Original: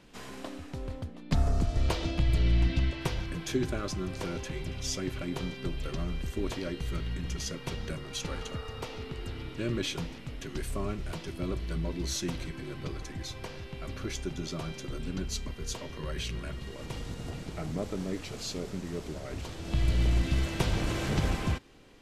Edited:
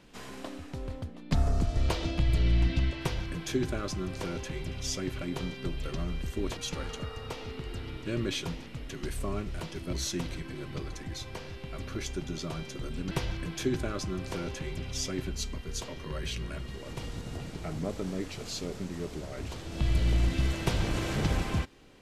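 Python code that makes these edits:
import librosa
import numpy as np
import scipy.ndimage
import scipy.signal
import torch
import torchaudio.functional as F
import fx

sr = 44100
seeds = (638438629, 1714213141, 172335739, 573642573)

y = fx.edit(x, sr, fx.duplicate(start_s=3.0, length_s=2.16, to_s=15.2),
    fx.cut(start_s=6.57, length_s=1.52),
    fx.cut(start_s=11.45, length_s=0.57), tone=tone)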